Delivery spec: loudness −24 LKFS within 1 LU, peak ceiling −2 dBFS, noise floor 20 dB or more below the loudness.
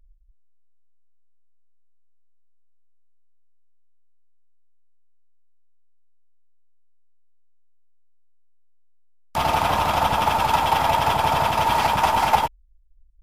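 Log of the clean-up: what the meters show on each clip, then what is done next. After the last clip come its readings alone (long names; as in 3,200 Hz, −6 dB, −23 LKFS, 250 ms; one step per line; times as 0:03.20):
integrated loudness −20.5 LKFS; sample peak −5.0 dBFS; target loudness −24.0 LKFS
→ level −3.5 dB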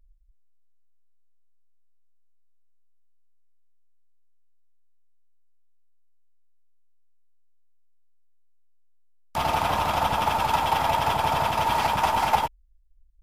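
integrated loudness −24.0 LKFS; sample peak −8.5 dBFS; background noise floor −56 dBFS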